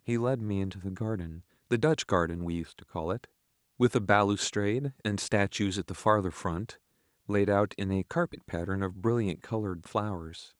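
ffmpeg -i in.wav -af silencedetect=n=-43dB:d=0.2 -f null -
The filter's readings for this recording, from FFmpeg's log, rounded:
silence_start: 1.40
silence_end: 1.71 | silence_duration: 0.31
silence_start: 3.25
silence_end: 3.80 | silence_duration: 0.55
silence_start: 6.74
silence_end: 7.29 | silence_duration: 0.55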